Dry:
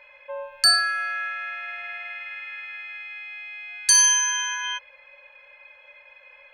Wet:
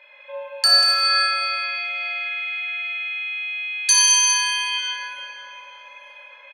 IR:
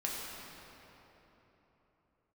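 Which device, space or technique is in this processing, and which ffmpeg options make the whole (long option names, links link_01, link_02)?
PA in a hall: -filter_complex "[0:a]highpass=190,equalizer=frequency=3600:width_type=o:width=0.48:gain=8,aecho=1:1:189:0.355[link_01];[1:a]atrim=start_sample=2205[link_02];[link_01][link_02]afir=irnorm=-1:irlink=0"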